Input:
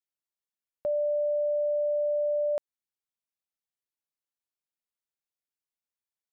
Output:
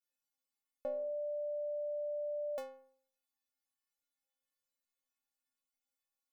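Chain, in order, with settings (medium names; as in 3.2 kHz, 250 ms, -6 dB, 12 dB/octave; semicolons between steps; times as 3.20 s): inharmonic resonator 260 Hz, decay 0.61 s, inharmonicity 0.008; trim +18 dB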